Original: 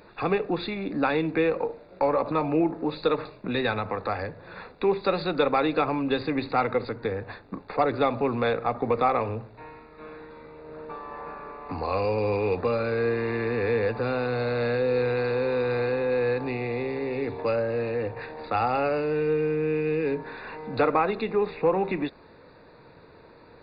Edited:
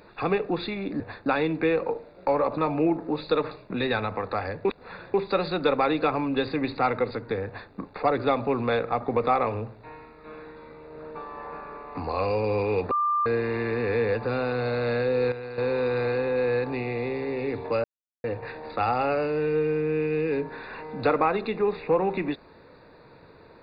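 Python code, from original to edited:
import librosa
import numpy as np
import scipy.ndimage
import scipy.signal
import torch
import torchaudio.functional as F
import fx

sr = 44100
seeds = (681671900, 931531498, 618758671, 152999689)

y = fx.edit(x, sr, fx.reverse_span(start_s=4.39, length_s=0.49),
    fx.duplicate(start_s=7.2, length_s=0.26, to_s=1.0),
    fx.bleep(start_s=12.65, length_s=0.35, hz=1190.0, db=-21.0),
    fx.clip_gain(start_s=15.06, length_s=0.26, db=-10.5),
    fx.silence(start_s=17.58, length_s=0.4), tone=tone)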